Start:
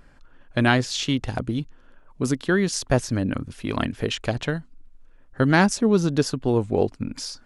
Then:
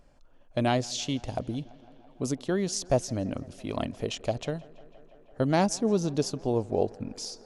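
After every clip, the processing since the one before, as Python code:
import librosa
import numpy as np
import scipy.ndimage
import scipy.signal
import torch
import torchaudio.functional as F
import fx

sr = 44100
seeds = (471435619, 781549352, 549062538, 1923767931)

y = fx.graphic_eq_15(x, sr, hz=(630, 1600, 6300), db=(8, -9, 5))
y = fx.echo_tape(y, sr, ms=167, feedback_pct=90, wet_db=-22.0, lp_hz=4400.0, drive_db=9.0, wow_cents=14)
y = y * librosa.db_to_amplitude(-7.5)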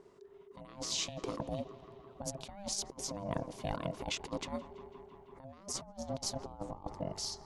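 y = fx.over_compress(x, sr, threshold_db=-33.0, ratio=-0.5)
y = y * np.sin(2.0 * np.pi * 400.0 * np.arange(len(y)) / sr)
y = y * librosa.db_to_amplitude(-3.5)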